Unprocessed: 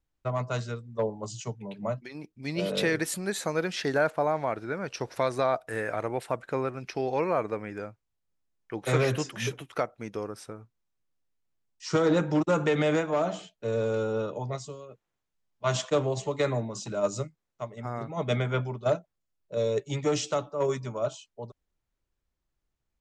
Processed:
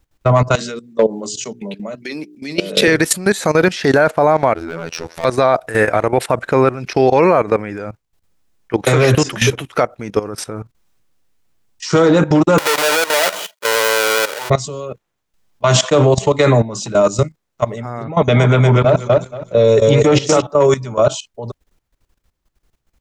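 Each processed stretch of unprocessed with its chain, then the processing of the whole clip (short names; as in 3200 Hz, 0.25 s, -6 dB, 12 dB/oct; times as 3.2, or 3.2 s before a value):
0.55–2.88 HPF 210 Hz 24 dB/oct + bell 920 Hz -10 dB 1.5 oct + notches 60/120/180/240/300/360/420 Hz
4.54–5.25 overloaded stage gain 29 dB + robotiser 82.9 Hz
12.58–14.5 half-waves squared off + HPF 730 Hz + comb 2.1 ms, depth 31%
18.04–20.42 bands offset in time lows, highs 0.11 s, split 4900 Hz + warbling echo 0.238 s, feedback 32%, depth 69 cents, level -6 dB
whole clip: level quantiser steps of 16 dB; maximiser +23 dB; gain -1 dB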